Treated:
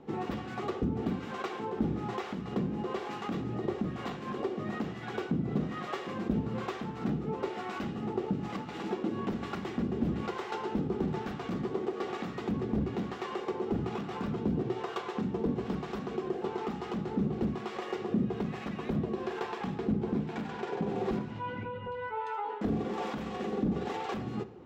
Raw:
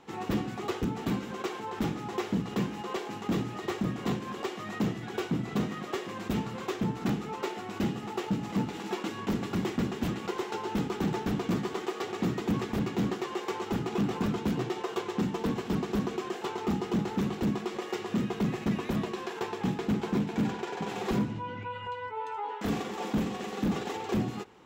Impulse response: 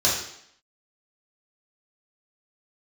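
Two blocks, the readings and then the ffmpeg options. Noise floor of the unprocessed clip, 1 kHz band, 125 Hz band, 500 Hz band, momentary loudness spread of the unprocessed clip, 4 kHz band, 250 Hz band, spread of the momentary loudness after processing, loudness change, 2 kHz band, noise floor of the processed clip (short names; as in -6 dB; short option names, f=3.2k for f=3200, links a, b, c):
-41 dBFS, -1.5 dB, -2.5 dB, -0.5 dB, 6 LU, -6.0 dB, -2.5 dB, 5 LU, -2.0 dB, -3.5 dB, -41 dBFS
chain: -filter_complex "[0:a]acompressor=threshold=-33dB:ratio=6,acrossover=split=640[a][b];[a]aeval=exprs='val(0)*(1-0.7/2+0.7/2*cos(2*PI*1.1*n/s))':c=same[c];[b]aeval=exprs='val(0)*(1-0.7/2-0.7/2*cos(2*PI*1.1*n/s))':c=same[d];[c][d]amix=inputs=2:normalize=0,lowpass=f=2.2k:p=1,bandreject=f=950:w=13,asplit=2[e][f];[1:a]atrim=start_sample=2205,lowpass=5.9k,lowshelf=f=190:g=8.5[g];[f][g]afir=irnorm=-1:irlink=0,volume=-26dB[h];[e][h]amix=inputs=2:normalize=0,volume=6dB"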